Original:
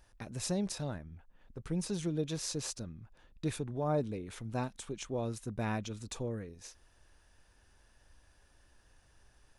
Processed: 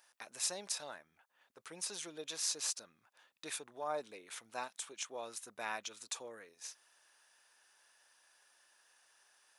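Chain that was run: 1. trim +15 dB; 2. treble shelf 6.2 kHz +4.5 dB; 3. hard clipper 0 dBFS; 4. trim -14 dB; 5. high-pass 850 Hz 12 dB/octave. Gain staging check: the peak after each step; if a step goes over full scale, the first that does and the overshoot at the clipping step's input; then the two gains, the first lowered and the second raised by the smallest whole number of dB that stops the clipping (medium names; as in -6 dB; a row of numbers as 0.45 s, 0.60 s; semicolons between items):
-4.5 dBFS, -4.0 dBFS, -4.0 dBFS, -18.0 dBFS, -18.5 dBFS; nothing clips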